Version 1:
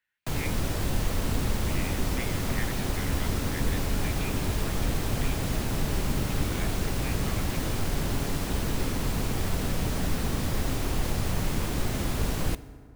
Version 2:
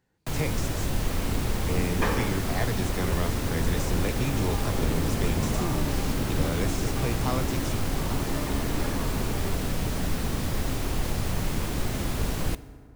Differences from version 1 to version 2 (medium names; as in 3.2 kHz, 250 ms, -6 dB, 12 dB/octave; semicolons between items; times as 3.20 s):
speech: remove Butterworth band-pass 2.3 kHz, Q 1.3; second sound: unmuted